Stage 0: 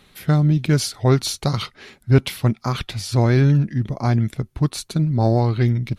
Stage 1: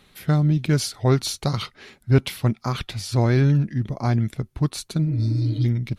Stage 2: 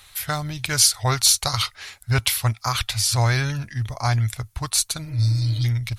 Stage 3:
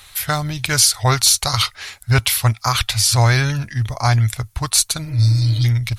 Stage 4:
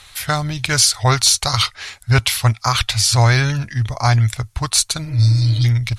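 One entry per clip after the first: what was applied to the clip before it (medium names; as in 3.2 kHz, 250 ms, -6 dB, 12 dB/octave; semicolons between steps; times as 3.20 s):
spectral replace 5.09–5.63 s, 230–2900 Hz before; trim -2.5 dB
FFT filter 110 Hz 0 dB, 160 Hz -19 dB, 360 Hz -17 dB, 720 Hz -2 dB, 1 kHz +1 dB, 3.2 kHz +3 dB, 8 kHz +11 dB; trim +4.5 dB
loudness maximiser +6.5 dB; trim -1 dB
low-pass 9.3 kHz 12 dB/octave; trim +1 dB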